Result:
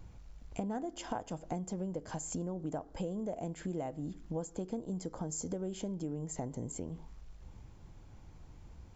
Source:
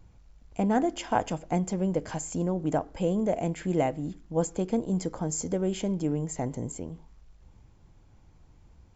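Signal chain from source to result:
dynamic equaliser 2,300 Hz, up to −7 dB, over −55 dBFS, Q 1.8
downward compressor 6 to 1, threshold −39 dBFS, peak gain reduction 18 dB
level +3 dB

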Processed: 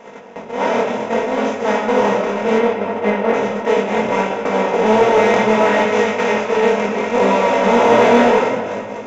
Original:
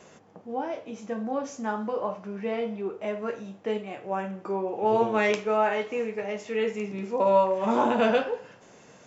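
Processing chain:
compressor on every frequency bin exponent 0.2
0:02.58–0:03.34: Bessel low-pass filter 2,500 Hz
0:05.86–0:06.32: tilt shelving filter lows −4 dB, about 820 Hz
on a send: delay that swaps between a low-pass and a high-pass 258 ms, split 1,100 Hz, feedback 70%, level −10 dB
on the sum: surface crackle 80 per second −42 dBFS
noise gate −17 dBFS, range −23 dB
rectangular room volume 3,700 cubic metres, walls mixed, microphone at 1.7 metres
chorus effect 0.67 Hz, delay 19 ms, depth 6.3 ms
0:07.88–0:08.32: double-tracking delay 17 ms −5.5 dB
in parallel at −6.5 dB: hard clipping −14.5 dBFS, distortion −12 dB
on the sum: level +1 dB

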